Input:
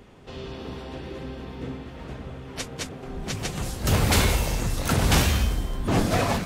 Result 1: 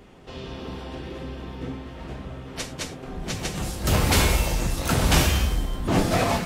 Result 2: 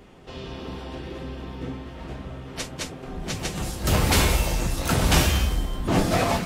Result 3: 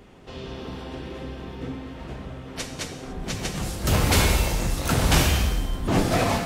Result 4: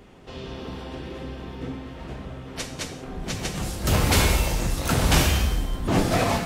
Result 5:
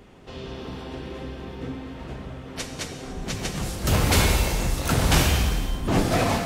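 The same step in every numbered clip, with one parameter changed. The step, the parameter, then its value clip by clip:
reverb whose tail is shaped and stops, gate: 130, 80, 320, 220, 520 milliseconds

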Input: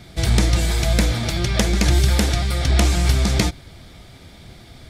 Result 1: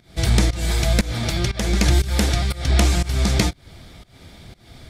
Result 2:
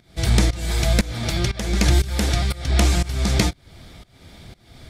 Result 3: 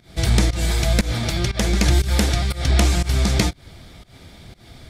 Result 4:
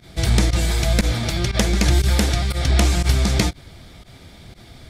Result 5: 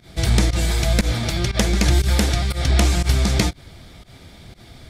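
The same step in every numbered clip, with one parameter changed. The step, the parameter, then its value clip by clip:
fake sidechain pumping, release: 267, 409, 180, 65, 99 milliseconds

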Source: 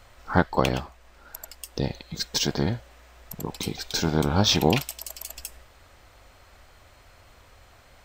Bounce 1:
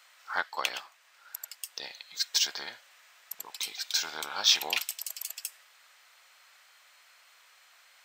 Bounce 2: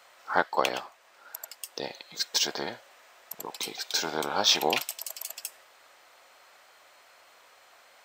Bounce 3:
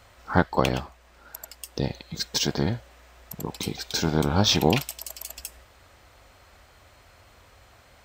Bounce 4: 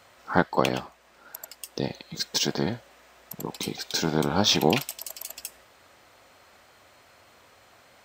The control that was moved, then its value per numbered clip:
high-pass filter, corner frequency: 1,500, 570, 45, 170 Hertz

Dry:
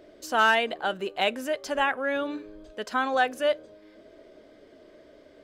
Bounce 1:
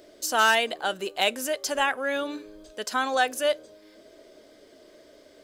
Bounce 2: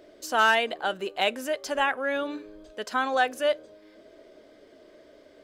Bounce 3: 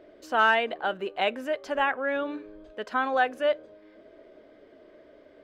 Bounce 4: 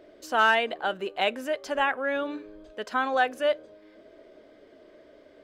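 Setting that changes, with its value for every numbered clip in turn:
bass and treble, treble: +13, +3, −13, −5 decibels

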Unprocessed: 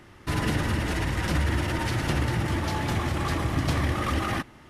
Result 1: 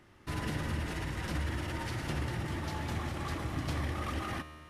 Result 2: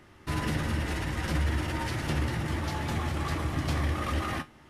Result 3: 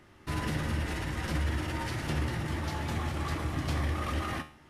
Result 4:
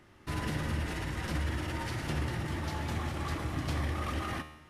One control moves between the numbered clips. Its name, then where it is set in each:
tuned comb filter, decay: 2.2, 0.18, 0.42, 0.93 seconds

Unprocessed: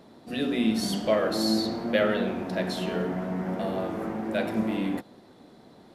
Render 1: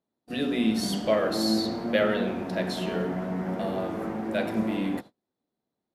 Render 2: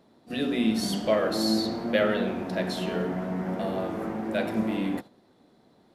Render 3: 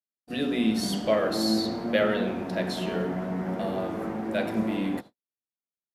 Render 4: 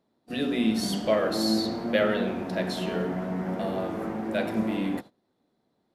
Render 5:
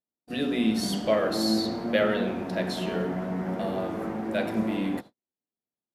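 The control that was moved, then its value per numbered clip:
noise gate, range: −33, −8, −59, −21, −47 decibels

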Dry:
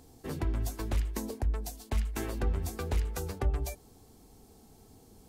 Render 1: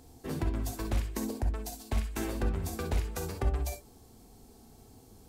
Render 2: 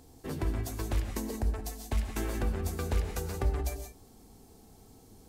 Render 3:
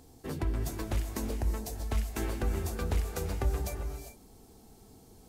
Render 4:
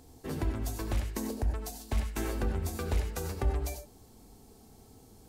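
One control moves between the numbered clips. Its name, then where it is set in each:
reverb whose tail is shaped and stops, gate: 80, 200, 430, 120 milliseconds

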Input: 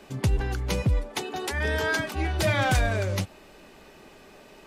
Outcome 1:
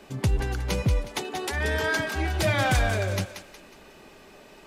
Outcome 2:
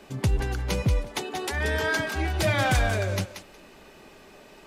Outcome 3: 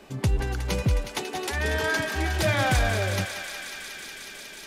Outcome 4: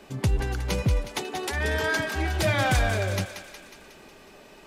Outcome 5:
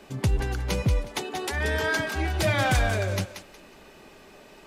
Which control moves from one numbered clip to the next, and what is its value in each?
feedback echo with a high-pass in the loop, feedback: 40, 15, 92, 61, 26%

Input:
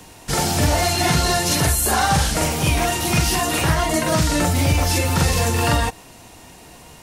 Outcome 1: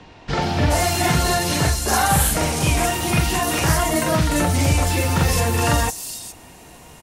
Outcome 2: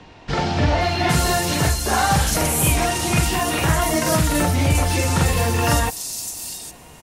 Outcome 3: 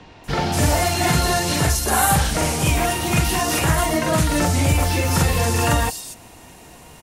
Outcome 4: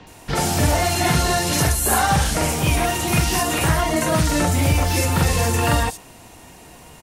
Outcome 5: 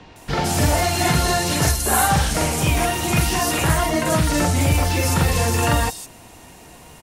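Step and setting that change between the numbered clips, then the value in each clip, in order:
multiband delay without the direct sound, delay time: 420, 810, 240, 70, 160 milliseconds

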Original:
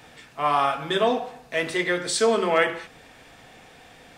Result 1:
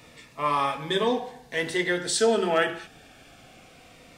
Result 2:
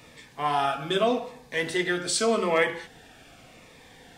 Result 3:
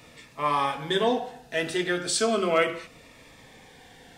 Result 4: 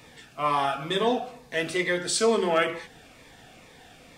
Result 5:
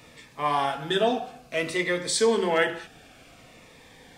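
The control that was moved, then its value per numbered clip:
phaser whose notches keep moving one way, speed: 0.23, 0.83, 0.34, 2.2, 0.56 Hertz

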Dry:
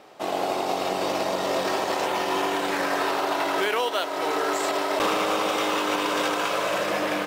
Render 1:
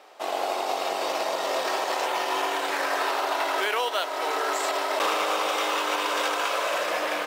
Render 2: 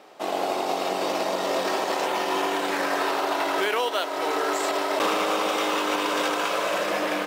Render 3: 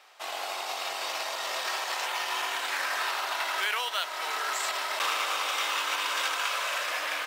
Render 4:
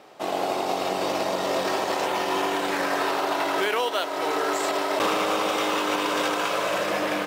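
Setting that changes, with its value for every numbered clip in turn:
high-pass filter, corner frequency: 500, 190, 1,300, 61 Hertz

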